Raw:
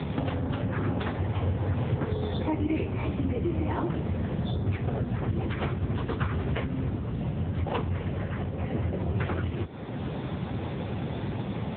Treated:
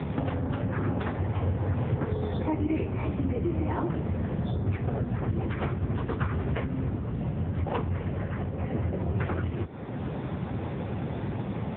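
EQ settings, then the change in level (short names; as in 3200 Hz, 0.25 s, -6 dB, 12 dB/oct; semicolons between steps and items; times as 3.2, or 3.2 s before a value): LPF 2500 Hz 12 dB/oct; 0.0 dB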